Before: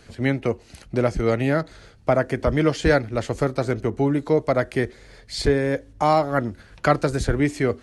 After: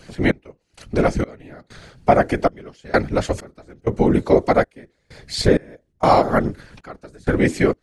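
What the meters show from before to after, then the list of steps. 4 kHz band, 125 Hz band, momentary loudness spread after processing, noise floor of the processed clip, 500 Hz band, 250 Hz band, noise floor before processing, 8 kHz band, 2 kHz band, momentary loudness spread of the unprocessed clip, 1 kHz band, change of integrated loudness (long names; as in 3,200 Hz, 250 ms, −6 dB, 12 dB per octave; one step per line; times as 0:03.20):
+2.5 dB, −0.5 dB, 13 LU, −67 dBFS, +2.0 dB, +2.0 dB, −50 dBFS, +1.5 dB, +1.0 dB, 8 LU, +4.0 dB, +2.5 dB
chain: random phases in short frames
gate pattern "xx...xxx...xxx" 97 BPM −24 dB
level +4.5 dB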